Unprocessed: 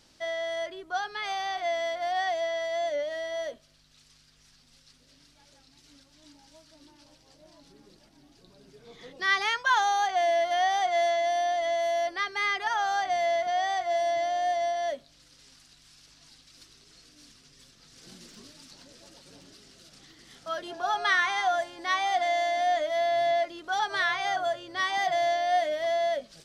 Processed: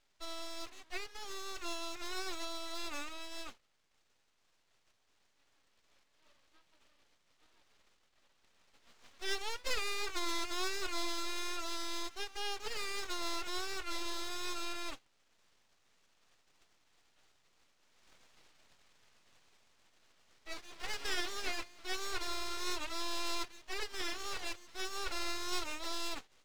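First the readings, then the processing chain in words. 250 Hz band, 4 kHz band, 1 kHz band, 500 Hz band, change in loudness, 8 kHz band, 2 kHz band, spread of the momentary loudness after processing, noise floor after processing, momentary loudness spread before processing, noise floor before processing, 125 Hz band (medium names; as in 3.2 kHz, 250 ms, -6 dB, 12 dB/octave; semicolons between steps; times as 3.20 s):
+0.5 dB, -5.0 dB, -18.0 dB, -19.0 dB, -12.5 dB, -1.0 dB, -13.0 dB, 8 LU, -74 dBFS, 8 LU, -61 dBFS, no reading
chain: formants flattened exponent 0.1; Chebyshev low-pass 3.7 kHz, order 3; full-wave rectifier; trim -7.5 dB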